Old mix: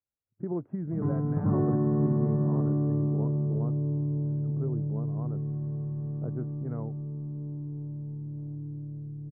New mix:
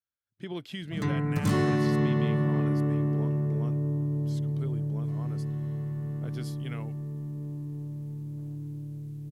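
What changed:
speech -5.5 dB; master: remove Bessel low-pass 720 Hz, order 8

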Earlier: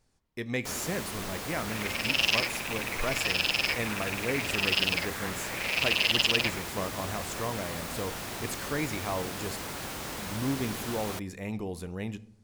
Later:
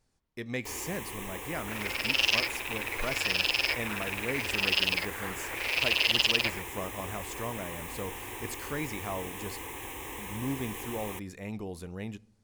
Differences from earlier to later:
speech: send -10.0 dB; first sound: add static phaser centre 940 Hz, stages 8

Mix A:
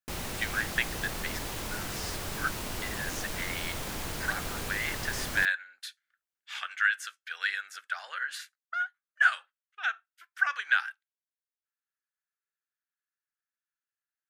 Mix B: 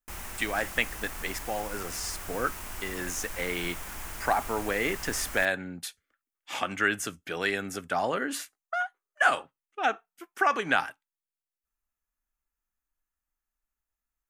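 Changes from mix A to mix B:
speech: remove ladder high-pass 1.4 kHz, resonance 65%; master: add graphic EQ 125/250/500/4000 Hz -12/-6/-9/-10 dB

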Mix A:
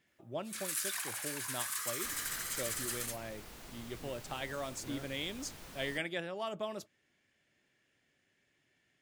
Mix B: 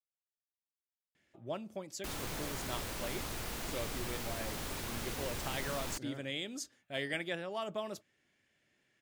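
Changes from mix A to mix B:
speech: entry +1.15 s; first sound: muted; second sound +10.5 dB

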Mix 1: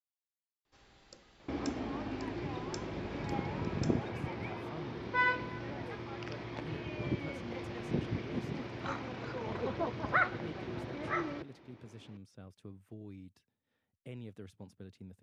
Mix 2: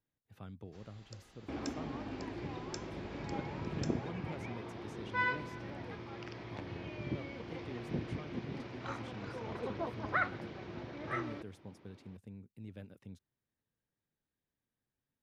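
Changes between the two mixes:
speech: entry -2.95 s; second sound -3.5 dB

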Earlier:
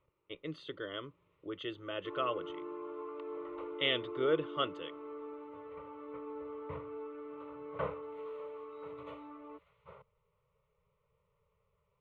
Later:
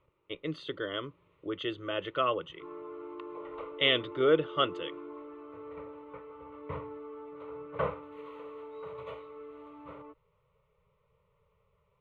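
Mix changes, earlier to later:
speech +6.0 dB; first sound: entry +0.55 s; second sound +5.5 dB

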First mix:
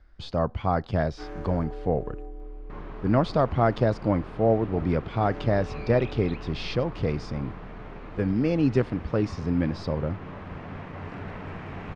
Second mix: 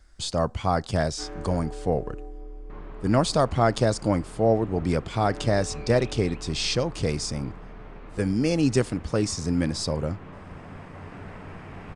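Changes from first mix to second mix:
speech: remove distance through air 310 m; second sound -3.5 dB

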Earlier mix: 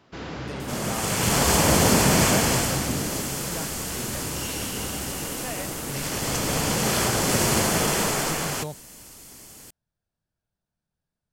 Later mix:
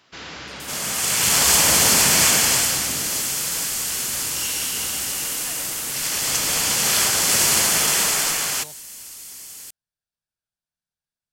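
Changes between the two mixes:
speech -6.5 dB; master: add tilt shelf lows -8.5 dB, about 1.1 kHz

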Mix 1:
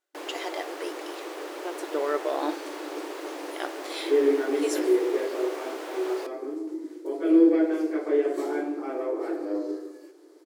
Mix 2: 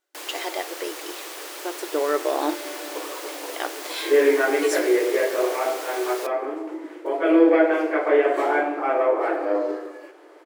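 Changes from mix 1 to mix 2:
speech +4.5 dB; first sound: add tilt EQ +4 dB/octave; second sound: add high-order bell 1.3 kHz +14.5 dB 2.9 oct

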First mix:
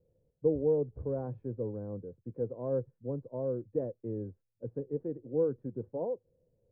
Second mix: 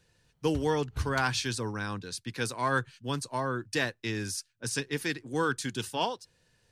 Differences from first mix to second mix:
speech: add bass shelf 420 Hz -8 dB; master: remove four-pole ladder low-pass 570 Hz, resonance 70%

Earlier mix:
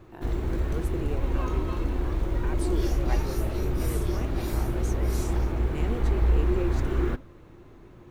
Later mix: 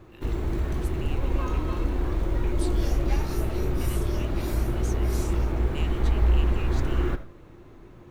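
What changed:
speech: add resonant high-pass 2.9 kHz, resonance Q 3.2; first sound: send +11.5 dB

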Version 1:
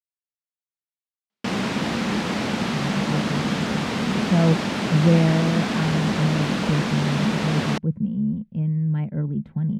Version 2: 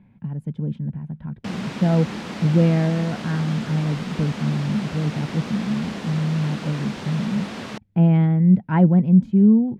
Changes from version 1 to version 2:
speech: entry -2.50 s; background -7.5 dB

